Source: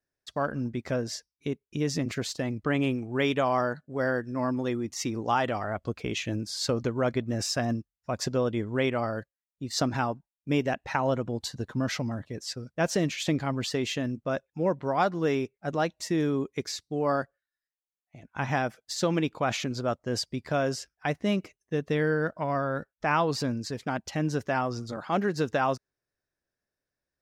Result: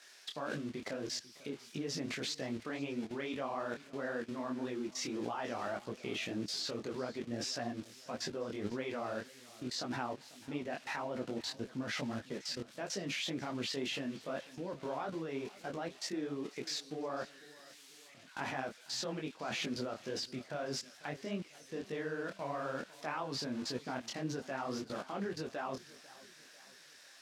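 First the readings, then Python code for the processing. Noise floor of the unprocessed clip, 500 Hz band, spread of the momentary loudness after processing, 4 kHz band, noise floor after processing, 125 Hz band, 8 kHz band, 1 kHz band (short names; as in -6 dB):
under -85 dBFS, -11.0 dB, 8 LU, -5.0 dB, -58 dBFS, -15.5 dB, -7.5 dB, -12.0 dB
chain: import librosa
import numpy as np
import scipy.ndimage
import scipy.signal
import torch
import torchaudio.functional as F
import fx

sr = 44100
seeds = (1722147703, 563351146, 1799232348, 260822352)

y = x + 0.5 * 10.0 ** (-27.5 / 20.0) * np.diff(np.sign(x), prepend=np.sign(x[:1]))
y = fx.bandpass_edges(y, sr, low_hz=200.0, high_hz=4200.0)
y = fx.level_steps(y, sr, step_db=20)
y = fx.echo_feedback(y, sr, ms=495, feedback_pct=46, wet_db=-20.0)
y = fx.detune_double(y, sr, cents=59)
y = F.gain(torch.from_numpy(y), 5.0).numpy()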